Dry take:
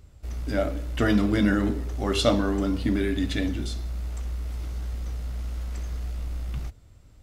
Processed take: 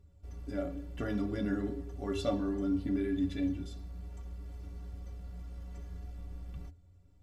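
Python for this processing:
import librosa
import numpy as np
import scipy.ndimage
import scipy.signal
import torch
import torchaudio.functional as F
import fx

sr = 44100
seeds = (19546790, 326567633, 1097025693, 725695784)

y = fx.tilt_shelf(x, sr, db=5.0, hz=970.0)
y = fx.stiff_resonator(y, sr, f0_hz=84.0, decay_s=0.21, stiffness=0.03)
y = F.gain(torch.from_numpy(y), -5.5).numpy()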